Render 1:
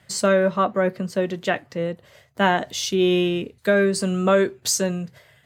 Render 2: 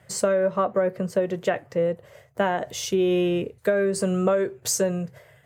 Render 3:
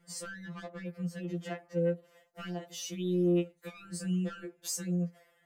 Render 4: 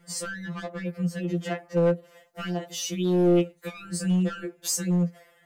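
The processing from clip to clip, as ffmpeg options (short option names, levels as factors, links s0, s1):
-af "equalizer=f=125:t=o:w=1:g=4,equalizer=f=250:t=o:w=1:g=-5,equalizer=f=500:t=o:w=1:g=7,equalizer=f=4000:t=o:w=1:g=-8,acompressor=threshold=0.126:ratio=10"
-filter_complex "[0:a]acrossover=split=420|1800[s0][s1][s2];[s1]asoftclip=type=tanh:threshold=0.0316[s3];[s0][s3][s2]amix=inputs=3:normalize=0,afftfilt=real='re*2.83*eq(mod(b,8),0)':imag='im*2.83*eq(mod(b,8),0)':win_size=2048:overlap=0.75,volume=0.398"
-af "aeval=exprs='clip(val(0),-1,0.0447)':c=same,volume=2.66"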